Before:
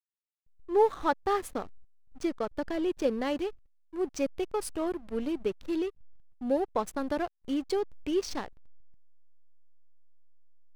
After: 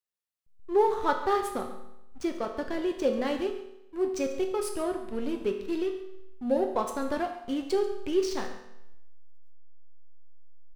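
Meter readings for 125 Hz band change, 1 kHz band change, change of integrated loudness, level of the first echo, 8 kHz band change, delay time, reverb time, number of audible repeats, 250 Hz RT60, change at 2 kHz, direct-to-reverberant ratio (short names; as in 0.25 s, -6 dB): n/a, +2.0 dB, +1.5 dB, -16.0 dB, +1.5 dB, 0.138 s, 0.85 s, 1, 0.85 s, +2.0 dB, 3.0 dB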